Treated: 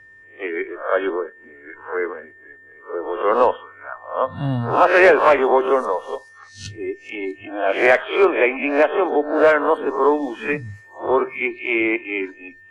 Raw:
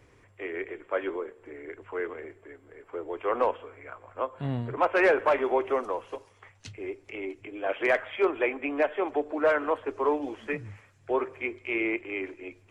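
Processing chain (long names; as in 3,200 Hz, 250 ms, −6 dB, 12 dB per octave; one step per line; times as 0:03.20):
peak hold with a rise ahead of every peak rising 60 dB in 0.48 s
noise reduction from a noise print of the clip's start 14 dB
steady tone 1,800 Hz −53 dBFS
level +8.5 dB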